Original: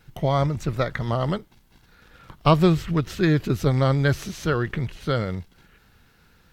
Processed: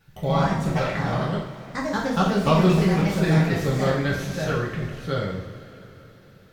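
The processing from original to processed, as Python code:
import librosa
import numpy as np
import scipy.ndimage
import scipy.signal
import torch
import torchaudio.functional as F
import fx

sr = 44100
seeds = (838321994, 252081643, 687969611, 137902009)

y = fx.echo_pitch(x, sr, ms=95, semitones=3, count=3, db_per_echo=-3.0)
y = fx.rev_double_slope(y, sr, seeds[0], early_s=0.6, late_s=4.4, knee_db=-18, drr_db=-4.0)
y = F.gain(torch.from_numpy(y), -7.0).numpy()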